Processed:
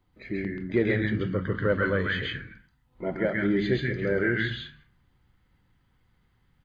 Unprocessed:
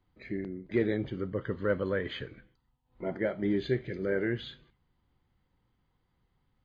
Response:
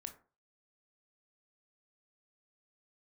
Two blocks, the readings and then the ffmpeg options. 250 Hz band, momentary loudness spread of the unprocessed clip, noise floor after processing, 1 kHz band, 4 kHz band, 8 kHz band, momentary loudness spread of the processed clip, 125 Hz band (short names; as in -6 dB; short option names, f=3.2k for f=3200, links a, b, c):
+5.0 dB, 10 LU, -68 dBFS, +7.5 dB, +7.5 dB, n/a, 11 LU, +7.5 dB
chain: -filter_complex "[0:a]asplit=2[a][b];[b]firequalizer=gain_entry='entry(170,0);entry(500,-18);entry(1500,5);entry(4100,-1)':delay=0.05:min_phase=1[c];[1:a]atrim=start_sample=2205,adelay=133[d];[c][d]afir=irnorm=-1:irlink=0,volume=6dB[e];[a][e]amix=inputs=2:normalize=0,volume=3.5dB"